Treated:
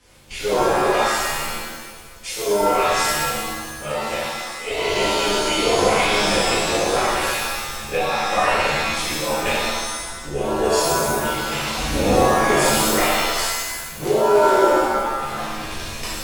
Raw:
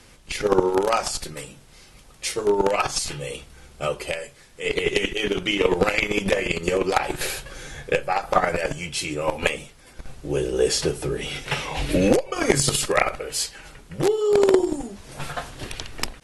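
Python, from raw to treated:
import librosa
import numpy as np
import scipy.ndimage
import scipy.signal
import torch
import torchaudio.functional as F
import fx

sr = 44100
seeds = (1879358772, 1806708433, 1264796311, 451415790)

y = fx.rev_shimmer(x, sr, seeds[0], rt60_s=1.3, semitones=7, shimmer_db=-2, drr_db=-10.5)
y = y * librosa.db_to_amplitude(-10.5)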